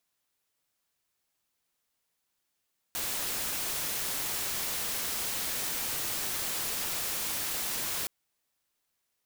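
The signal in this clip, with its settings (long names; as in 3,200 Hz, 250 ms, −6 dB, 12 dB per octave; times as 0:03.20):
noise white, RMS −33 dBFS 5.12 s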